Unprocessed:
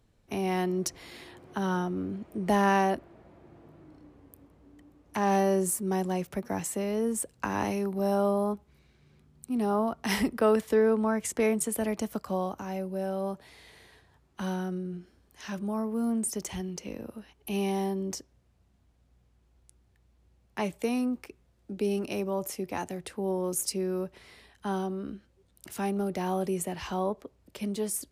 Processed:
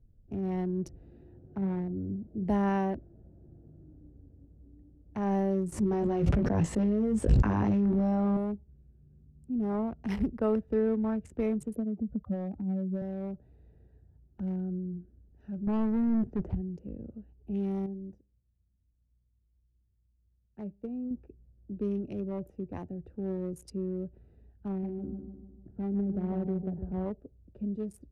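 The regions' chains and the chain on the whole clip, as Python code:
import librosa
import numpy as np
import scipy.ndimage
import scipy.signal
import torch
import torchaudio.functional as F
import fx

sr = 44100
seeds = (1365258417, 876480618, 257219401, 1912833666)

y = fx.chain(x, sr, fx.lowpass(hz=1600.0, slope=12),
    fx.notch(hz=1200.0, q=8.1),
    fx.doubler(ms=41.0, db=-12.5), at=(1.57, 2.45))
y = fx.chain(y, sr, fx.lowpass(hz=6600.0, slope=12),
    fx.doubler(ms=19.0, db=-4),
    fx.env_flatten(amount_pct=100), at=(5.72, 8.37))
y = fx.chain(y, sr, fx.spec_expand(power=2.3),
    fx.lowpass(hz=2700.0, slope=12),
    fx.band_squash(depth_pct=100), at=(11.76, 13.02))
y = fx.chain(y, sr, fx.lowpass(hz=2000.0, slope=12),
    fx.leveller(passes=3), at=(15.67, 16.55))
y = fx.chain(y, sr, fx.comb_fb(f0_hz=100.0, decay_s=0.5, harmonics='all', damping=0.0, mix_pct=40),
    fx.upward_expand(threshold_db=-49.0, expansion=1.5), at=(17.86, 21.11))
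y = fx.chain(y, sr, fx.gaussian_blur(sigma=5.7),
    fx.echo_feedback(ms=151, feedback_pct=49, wet_db=-7), at=(24.68, 27.06))
y = fx.wiener(y, sr, points=41)
y = fx.riaa(y, sr, side='playback')
y = y * librosa.db_to_amplitude(-8.0)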